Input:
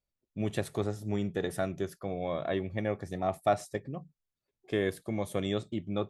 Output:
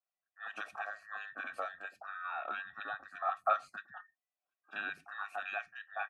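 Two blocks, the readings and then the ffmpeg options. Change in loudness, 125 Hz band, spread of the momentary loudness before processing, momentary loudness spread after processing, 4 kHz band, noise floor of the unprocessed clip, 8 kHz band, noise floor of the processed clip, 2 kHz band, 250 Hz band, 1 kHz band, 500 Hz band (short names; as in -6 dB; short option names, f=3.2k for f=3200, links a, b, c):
-6.0 dB, under -35 dB, 6 LU, 12 LU, -9.5 dB, under -85 dBFS, under -15 dB, under -85 dBFS, +4.0 dB, -28.5 dB, 0.0 dB, -14.0 dB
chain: -filter_complex "[0:a]afftfilt=real='real(if(between(b,1,1012),(2*floor((b-1)/92)+1)*92-b,b),0)':imag='imag(if(between(b,1,1012),(2*floor((b-1)/92)+1)*92-b,b),0)*if(between(b,1,1012),-1,1)':win_size=2048:overlap=0.75,asplit=3[a][b][c];[a]bandpass=f=730:t=q:w=8,volume=0dB[d];[b]bandpass=f=1.09k:t=q:w=8,volume=-6dB[e];[c]bandpass=f=2.44k:t=q:w=8,volume=-9dB[f];[d][e][f]amix=inputs=3:normalize=0,acrossover=split=160|1300[g][h][i];[i]adelay=30[j];[g]adelay=150[k];[k][h][j]amix=inputs=3:normalize=0,volume=10.5dB"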